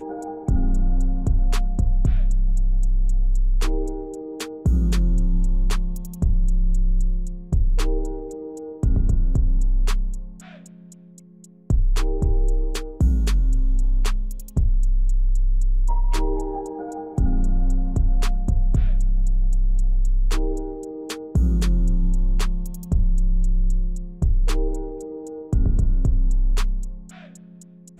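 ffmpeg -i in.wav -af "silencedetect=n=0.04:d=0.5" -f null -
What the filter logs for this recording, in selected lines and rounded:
silence_start: 10.24
silence_end: 11.70 | silence_duration: 1.46
silence_start: 26.94
silence_end: 28.00 | silence_duration: 1.06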